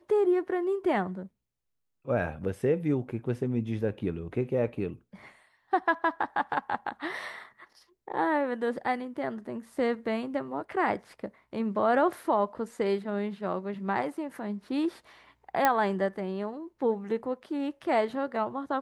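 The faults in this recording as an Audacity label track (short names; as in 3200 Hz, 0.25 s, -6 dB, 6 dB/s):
15.650000	15.650000	pop -9 dBFS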